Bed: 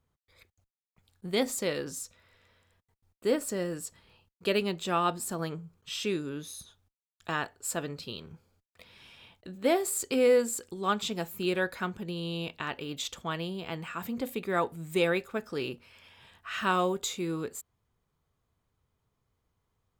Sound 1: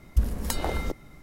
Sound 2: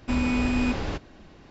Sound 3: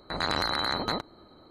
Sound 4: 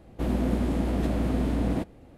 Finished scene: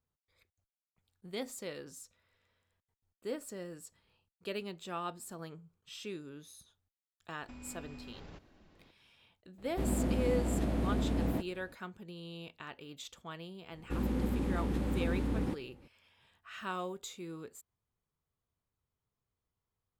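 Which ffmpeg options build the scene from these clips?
-filter_complex "[4:a]asplit=2[a][b];[0:a]volume=-11.5dB[c];[2:a]acompressor=threshold=-33dB:ratio=6:attack=3.2:release=140:knee=1:detection=peak[d];[b]asuperstop=centerf=660:order=4:qfactor=4.7[e];[d]atrim=end=1.5,asetpts=PTS-STARTPTS,volume=-13.5dB,afade=t=in:d=0.004:c=hsin,afade=t=out:st=1.496:d=0.004:c=hsin,adelay=7410[f];[a]atrim=end=2.17,asetpts=PTS-STARTPTS,volume=-6dB,afade=t=in:d=0.004:c=hsin,afade=t=out:st=2.166:d=0.004:c=hsin,adelay=9580[g];[e]atrim=end=2.17,asetpts=PTS-STARTPTS,volume=-7dB,afade=t=in:d=0.004:c=hsin,afade=t=out:st=2.166:d=0.004:c=hsin,adelay=13710[h];[c][f][g][h]amix=inputs=4:normalize=0"

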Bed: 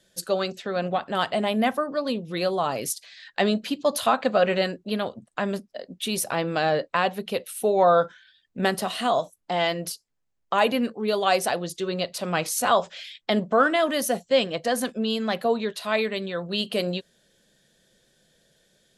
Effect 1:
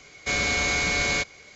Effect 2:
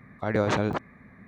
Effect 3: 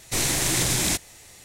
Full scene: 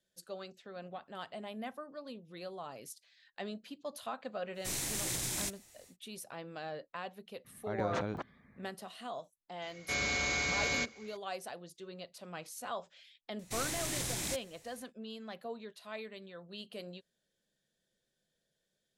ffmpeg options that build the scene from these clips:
-filter_complex "[3:a]asplit=2[a][b];[0:a]volume=-19.5dB[c];[a]highshelf=f=6.3k:g=5.5[d];[1:a]highpass=55[e];[d]atrim=end=1.44,asetpts=PTS-STARTPTS,volume=-15.5dB,afade=t=in:d=0.1,afade=t=out:st=1.34:d=0.1,adelay=199773S[f];[2:a]atrim=end=1.27,asetpts=PTS-STARTPTS,volume=-11.5dB,afade=t=in:d=0.02,afade=t=out:st=1.25:d=0.02,adelay=7440[g];[e]atrim=end=1.55,asetpts=PTS-STARTPTS,volume=-8.5dB,afade=t=in:d=0.004:c=hsin,afade=t=out:st=1.546:d=0.004:c=hsin,adelay=424242S[h];[b]atrim=end=1.44,asetpts=PTS-STARTPTS,volume=-14dB,afade=t=in:d=0.004:c=hsin,afade=t=out:st=1.436:d=0.004:c=hsin,adelay=13390[i];[c][f][g][h][i]amix=inputs=5:normalize=0"

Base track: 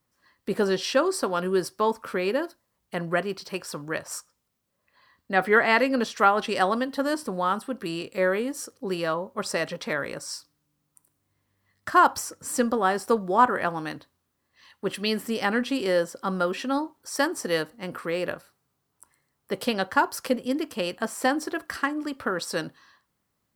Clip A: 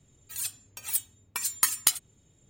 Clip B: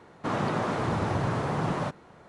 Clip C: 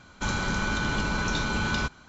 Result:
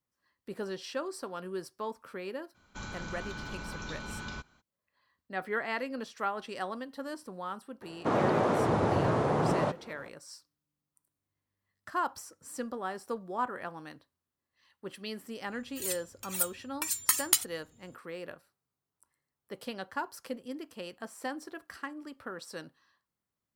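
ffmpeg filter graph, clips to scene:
-filter_complex "[0:a]volume=-13.5dB[a];[2:a]equalizer=f=480:w=0.69:g=8[b];[3:a]atrim=end=2.08,asetpts=PTS-STARTPTS,volume=-13.5dB,afade=t=in:d=0.02,afade=t=out:st=2.06:d=0.02,adelay=2540[c];[b]atrim=end=2.28,asetpts=PTS-STARTPTS,volume=-3.5dB,afade=t=in:d=0.004:c=hsin,afade=t=out:st=2.276:d=0.004:c=hsin,adelay=7810[d];[1:a]atrim=end=2.49,asetpts=PTS-STARTPTS,volume=-2dB,afade=t=in:d=0.004:c=hsin,afade=t=out:st=2.486:d=0.004:c=hsin,adelay=15460[e];[a][c][d][e]amix=inputs=4:normalize=0"

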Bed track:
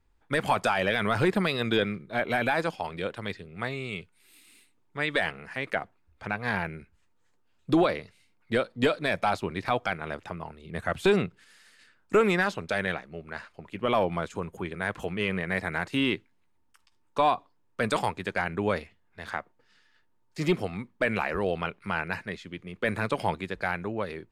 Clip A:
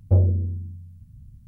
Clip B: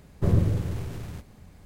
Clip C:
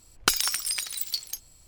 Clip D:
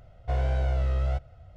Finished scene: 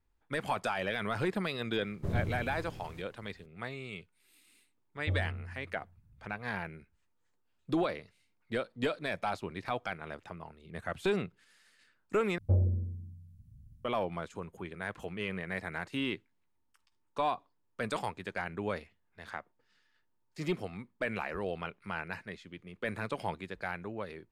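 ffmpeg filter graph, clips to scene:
-filter_complex "[1:a]asplit=2[a][b];[0:a]volume=-8dB[c];[b]aecho=1:1:109|218|327:0.106|0.0339|0.0108[d];[c]asplit=2[e][f];[e]atrim=end=12.384[g];[d]atrim=end=1.47,asetpts=PTS-STARTPTS,volume=-9.5dB[h];[f]atrim=start=13.846[i];[2:a]atrim=end=1.65,asetpts=PTS-STARTPTS,volume=-11.5dB,afade=t=in:d=0.004:c=hsin,afade=t=out:st=1.646:d=0.004:c=hsin,adelay=1810[j];[a]atrim=end=1.47,asetpts=PTS-STARTPTS,volume=-16dB,afade=t=in:d=0.004:c=hsin,afade=t=out:st=1.466:d=0.004:c=hsin,adelay=4960[k];[g][h]acrossfade=d=0.004:c1=hsin:c2=hsin[l];[l][i]acrossfade=d=0.004:c1=hsin:c2=hsin[m];[m][j][k]amix=inputs=3:normalize=0"

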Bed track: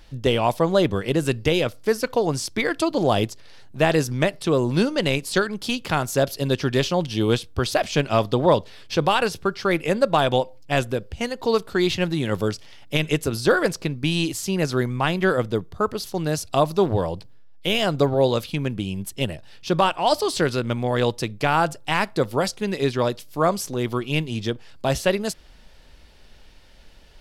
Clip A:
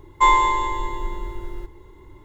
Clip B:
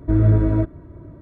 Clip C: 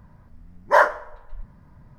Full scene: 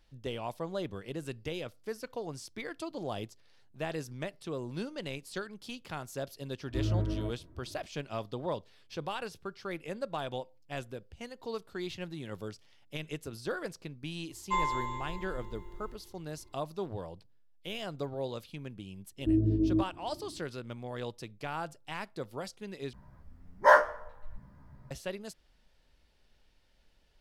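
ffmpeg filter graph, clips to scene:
-filter_complex "[2:a]asplit=2[a][b];[0:a]volume=-17.5dB[c];[b]lowpass=f=330:t=q:w=3.6[d];[3:a]asplit=2[e][f];[f]adelay=15,volume=-2dB[g];[e][g]amix=inputs=2:normalize=0[h];[c]asplit=2[i][j];[i]atrim=end=22.934[k];[h]atrim=end=1.98,asetpts=PTS-STARTPTS,volume=-6.5dB[l];[j]atrim=start=24.906[m];[a]atrim=end=1.21,asetpts=PTS-STARTPTS,volume=-15dB,afade=t=in:d=0.004:c=hsin,afade=t=out:st=1.206:d=0.004:c=hsin,adelay=293706S[n];[1:a]atrim=end=2.24,asetpts=PTS-STARTPTS,volume=-15dB,afade=t=in:d=0.004:c=hsin,afade=t=out:st=2.236:d=0.004:c=hsin,adelay=14300[o];[d]atrim=end=1.21,asetpts=PTS-STARTPTS,volume=-16dB,afade=t=in:d=0.004:c=hsin,afade=t=out:st=1.206:d=0.004:c=hsin,adelay=19180[p];[k][l]acrossfade=d=0.004:c1=hsin:c2=hsin[q];[q][m]acrossfade=d=0.004:c1=hsin:c2=hsin[r];[r][n][o][p]amix=inputs=4:normalize=0"

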